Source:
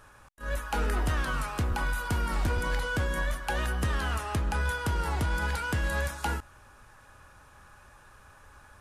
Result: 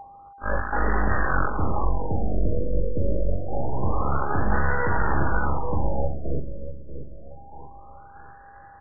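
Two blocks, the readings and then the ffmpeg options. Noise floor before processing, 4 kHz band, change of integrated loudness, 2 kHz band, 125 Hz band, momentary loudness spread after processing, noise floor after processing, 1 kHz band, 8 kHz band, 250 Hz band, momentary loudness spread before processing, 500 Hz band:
−55 dBFS, below −40 dB, +4.0 dB, +1.5 dB, +3.5 dB, 20 LU, −47 dBFS, +6.0 dB, below −40 dB, +6.5 dB, 3 LU, +8.0 dB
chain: -filter_complex "[0:a]aeval=exprs='0.0841*(cos(1*acos(clip(val(0)/0.0841,-1,1)))-cos(1*PI/2))+0.0266*(cos(2*acos(clip(val(0)/0.0841,-1,1)))-cos(2*PI/2))+0.0335*(cos(6*acos(clip(val(0)/0.0841,-1,1)))-cos(6*PI/2))':channel_layout=same,aeval=exprs='val(0)+0.0178*sin(2*PI*800*n/s)':channel_layout=same,lowshelf=frequency=130:gain=-4.5,asplit=2[link_01][link_02];[link_02]aecho=0:1:23|43:0.422|0.596[link_03];[link_01][link_03]amix=inputs=2:normalize=0,aeval=exprs='sgn(val(0))*max(abs(val(0))-0.00596,0)':channel_layout=same,asplit=2[link_04][link_05];[link_05]aecho=0:1:637|1274|1911|2548:0.316|0.123|0.0481|0.0188[link_06];[link_04][link_06]amix=inputs=2:normalize=0,afftfilt=real='re*lt(b*sr/1024,600*pow(2000/600,0.5+0.5*sin(2*PI*0.26*pts/sr)))':imag='im*lt(b*sr/1024,600*pow(2000/600,0.5+0.5*sin(2*PI*0.26*pts/sr)))':win_size=1024:overlap=0.75,volume=3dB"

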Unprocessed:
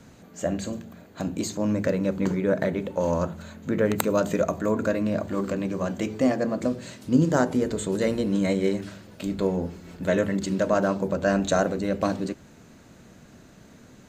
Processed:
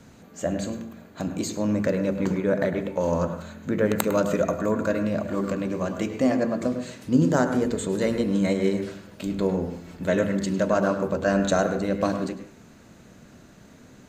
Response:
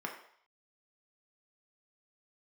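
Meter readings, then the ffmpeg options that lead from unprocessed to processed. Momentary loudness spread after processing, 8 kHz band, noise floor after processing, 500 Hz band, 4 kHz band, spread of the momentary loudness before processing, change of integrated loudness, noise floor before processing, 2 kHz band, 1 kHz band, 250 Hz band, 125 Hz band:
10 LU, 0.0 dB, −50 dBFS, +0.5 dB, 0.0 dB, 10 LU, +0.5 dB, −51 dBFS, +0.5 dB, +0.5 dB, +0.5 dB, +0.5 dB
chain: -filter_complex "[0:a]asplit=2[link_01][link_02];[1:a]atrim=start_sample=2205,asetrate=52920,aresample=44100,adelay=103[link_03];[link_02][link_03]afir=irnorm=-1:irlink=0,volume=-9.5dB[link_04];[link_01][link_04]amix=inputs=2:normalize=0"

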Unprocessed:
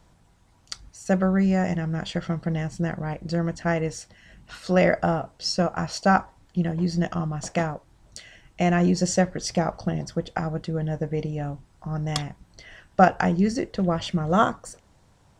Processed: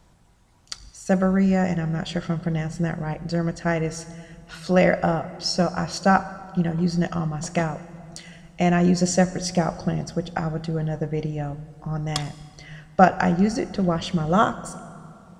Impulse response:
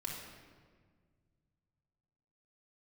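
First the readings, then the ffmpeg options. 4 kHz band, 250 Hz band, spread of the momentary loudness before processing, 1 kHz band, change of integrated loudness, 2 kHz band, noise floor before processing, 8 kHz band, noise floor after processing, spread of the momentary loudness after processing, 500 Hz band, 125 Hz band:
+1.5 dB, +1.5 dB, 16 LU, +1.5 dB, +1.5 dB, +1.0 dB, −59 dBFS, +2.0 dB, −51 dBFS, 18 LU, +1.5 dB, +2.0 dB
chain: -filter_complex "[0:a]asplit=2[link_01][link_02];[1:a]atrim=start_sample=2205,asetrate=24255,aresample=44100,highshelf=frequency=6600:gain=11[link_03];[link_02][link_03]afir=irnorm=-1:irlink=0,volume=-17dB[link_04];[link_01][link_04]amix=inputs=2:normalize=0"

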